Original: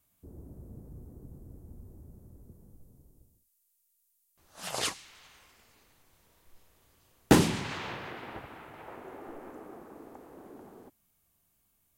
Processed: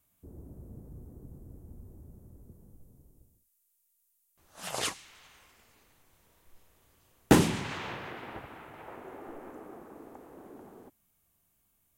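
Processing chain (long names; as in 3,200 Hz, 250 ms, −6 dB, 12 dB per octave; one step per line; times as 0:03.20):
parametric band 4,600 Hz −3 dB 0.62 octaves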